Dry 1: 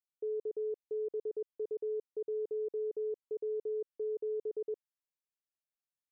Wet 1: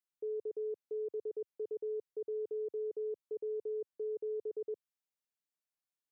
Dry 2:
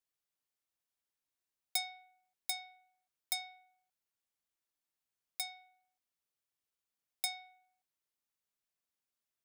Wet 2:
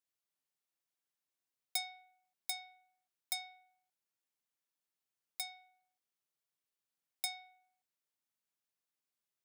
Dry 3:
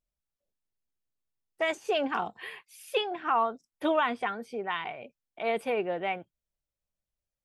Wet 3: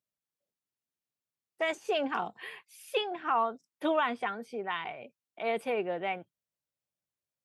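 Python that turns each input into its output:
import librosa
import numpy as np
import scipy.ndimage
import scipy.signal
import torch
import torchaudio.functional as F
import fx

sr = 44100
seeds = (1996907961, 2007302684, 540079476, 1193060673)

y = scipy.signal.sosfilt(scipy.signal.butter(4, 99.0, 'highpass', fs=sr, output='sos'), x)
y = y * librosa.db_to_amplitude(-2.0)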